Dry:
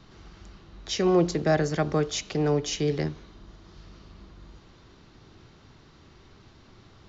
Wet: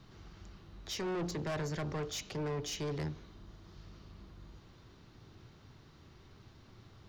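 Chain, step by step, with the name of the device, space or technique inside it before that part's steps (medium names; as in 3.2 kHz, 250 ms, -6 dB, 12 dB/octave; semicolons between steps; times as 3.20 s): open-reel tape (saturation -28 dBFS, distortion -6 dB; peaking EQ 110 Hz +5 dB 1 oct; white noise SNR 45 dB); trim -6 dB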